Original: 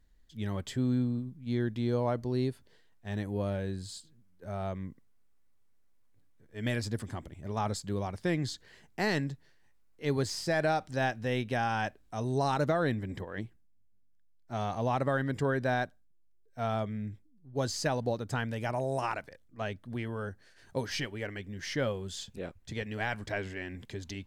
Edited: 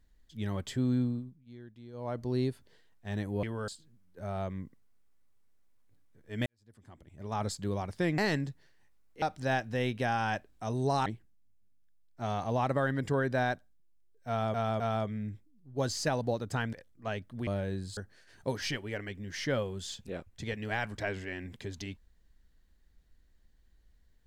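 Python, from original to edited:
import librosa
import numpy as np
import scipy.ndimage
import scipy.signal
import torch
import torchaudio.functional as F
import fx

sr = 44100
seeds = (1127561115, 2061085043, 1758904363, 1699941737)

y = fx.edit(x, sr, fx.fade_down_up(start_s=1.06, length_s=1.25, db=-18.5, fade_s=0.38),
    fx.swap(start_s=3.43, length_s=0.5, other_s=20.01, other_length_s=0.25),
    fx.fade_in_span(start_s=6.71, length_s=1.02, curve='qua'),
    fx.cut(start_s=8.43, length_s=0.58),
    fx.cut(start_s=10.05, length_s=0.68),
    fx.cut(start_s=12.57, length_s=0.8),
    fx.repeat(start_s=16.59, length_s=0.26, count=3),
    fx.cut(start_s=18.52, length_s=0.75), tone=tone)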